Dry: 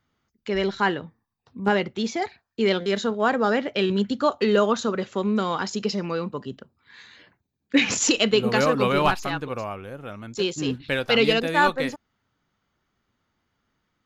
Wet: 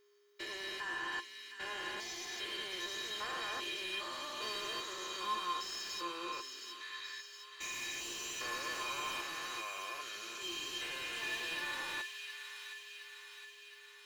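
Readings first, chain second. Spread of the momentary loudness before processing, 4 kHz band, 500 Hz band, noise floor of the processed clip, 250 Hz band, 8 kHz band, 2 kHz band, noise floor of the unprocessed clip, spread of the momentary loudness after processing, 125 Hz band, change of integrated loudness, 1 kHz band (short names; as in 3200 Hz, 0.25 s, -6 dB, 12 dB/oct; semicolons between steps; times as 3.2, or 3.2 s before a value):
12 LU, -9.5 dB, -26.0 dB, -56 dBFS, -28.0 dB, -11.5 dB, -12.0 dB, -78 dBFS, 9 LU, -32.0 dB, -16.5 dB, -15.0 dB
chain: stepped spectrum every 0.4 s; HPF 200 Hz; differentiator; overdrive pedal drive 35 dB, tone 2300 Hz, clips at -20 dBFS; resonator 350 Hz, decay 0.16 s, harmonics odd, mix 90%; thin delay 0.716 s, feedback 61%, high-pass 1700 Hz, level -6 dB; whine 410 Hz -70 dBFS; gain +3 dB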